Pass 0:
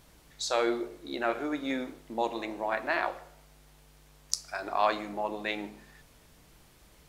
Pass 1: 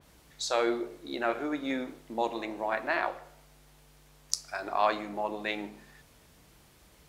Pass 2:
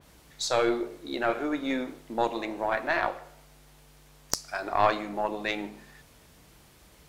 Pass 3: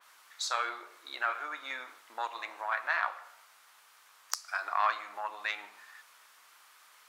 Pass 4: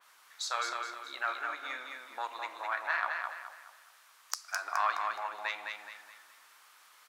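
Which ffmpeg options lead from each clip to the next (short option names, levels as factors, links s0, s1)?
-af "highpass=42,adynamicequalizer=threshold=0.00631:dfrequency=3300:dqfactor=0.7:tfrequency=3300:tqfactor=0.7:attack=5:release=100:ratio=0.375:range=2:mode=cutabove:tftype=highshelf"
-af "aeval=exprs='(tanh(3.98*val(0)+0.65)-tanh(0.65))/3.98':c=same,volume=2.11"
-filter_complex "[0:a]asplit=2[s0][s1];[s1]acompressor=threshold=0.0224:ratio=6,volume=1.26[s2];[s0][s2]amix=inputs=2:normalize=0,highpass=f=1200:t=q:w=2.4,volume=0.355"
-af "aecho=1:1:210|420|630|840|1050:0.596|0.22|0.0815|0.0302|0.0112,volume=0.794"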